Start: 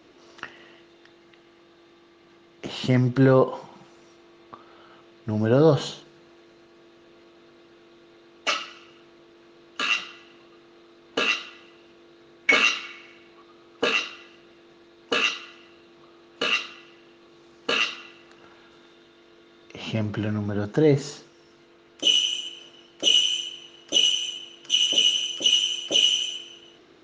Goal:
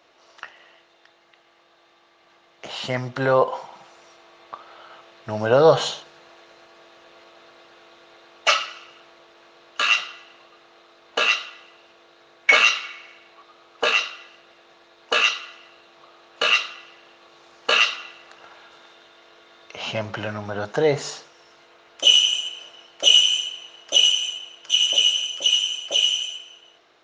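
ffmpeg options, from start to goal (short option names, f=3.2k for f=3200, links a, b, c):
-af "lowshelf=f=450:t=q:w=1.5:g=-11,dynaudnorm=f=640:g=11:m=11.5dB,volume=-1dB"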